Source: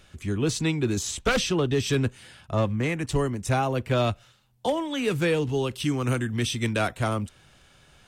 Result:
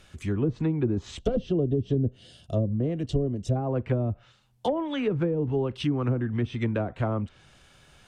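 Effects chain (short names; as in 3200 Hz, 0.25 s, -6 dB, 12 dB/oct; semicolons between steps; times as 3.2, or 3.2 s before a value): spectral gain 1.19–3.56, 750–2700 Hz -14 dB; treble ducked by the level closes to 380 Hz, closed at -19 dBFS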